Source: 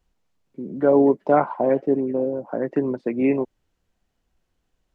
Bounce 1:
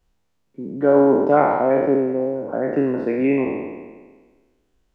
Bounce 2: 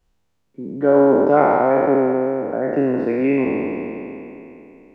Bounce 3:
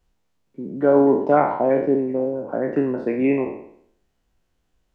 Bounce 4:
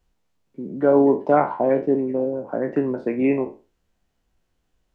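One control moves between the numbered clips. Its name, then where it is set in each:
peak hold with a decay on every bin, RT60: 1.45, 3.05, 0.67, 0.32 seconds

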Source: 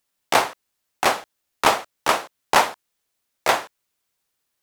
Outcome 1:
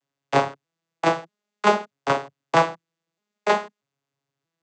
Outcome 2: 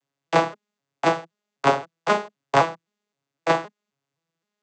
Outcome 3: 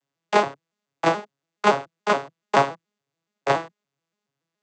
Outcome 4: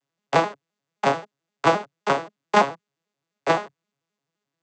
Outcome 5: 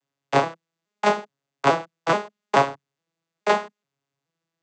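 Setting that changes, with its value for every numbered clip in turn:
vocoder with an arpeggio as carrier, a note every: 634, 260, 142, 87, 425 milliseconds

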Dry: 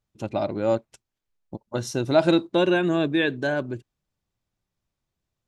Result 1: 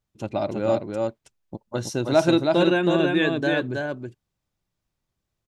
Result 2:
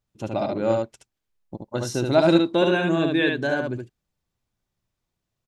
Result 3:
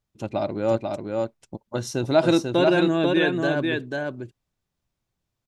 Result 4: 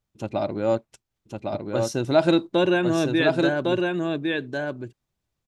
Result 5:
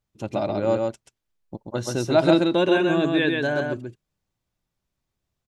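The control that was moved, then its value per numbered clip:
single-tap delay, delay time: 322, 72, 492, 1,106, 132 milliseconds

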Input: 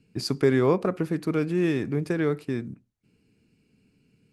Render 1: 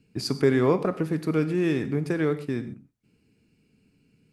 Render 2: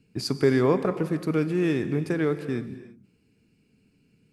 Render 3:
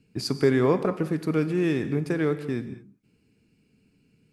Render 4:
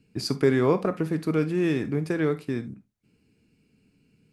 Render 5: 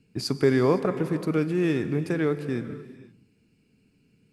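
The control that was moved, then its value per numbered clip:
reverb whose tail is shaped and stops, gate: 150, 360, 240, 90, 540 milliseconds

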